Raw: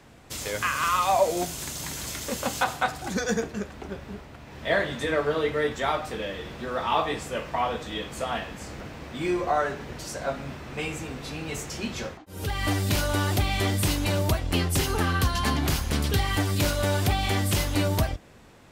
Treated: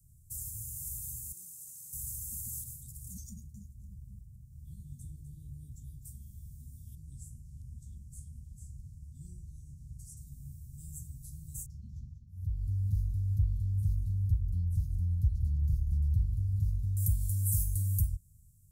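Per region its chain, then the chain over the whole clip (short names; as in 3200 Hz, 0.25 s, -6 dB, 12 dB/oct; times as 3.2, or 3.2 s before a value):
1.32–1.93 HPF 370 Hz + high shelf 5600 Hz -10 dB
3.29–6.03 high shelf 4200 Hz -10 dB + echo 0.251 s -11 dB
6.95–10.17 LFO notch square 3 Hz 850–3500 Hz + air absorption 54 m
11.66–16.97 air absorption 280 m + feedback echo 0.191 s, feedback 46%, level -10.5 dB
whole clip: inverse Chebyshev band-stop 550–2200 Hz, stop band 80 dB; high shelf 4900 Hz +4.5 dB; gain -2 dB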